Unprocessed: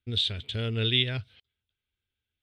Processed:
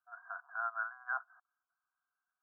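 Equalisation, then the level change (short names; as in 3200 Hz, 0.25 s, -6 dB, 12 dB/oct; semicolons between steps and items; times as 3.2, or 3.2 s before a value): brick-wall FIR band-pass 680–1700 Hz; bell 920 Hz +14.5 dB 0.82 oct; fixed phaser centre 1300 Hz, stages 8; +5.5 dB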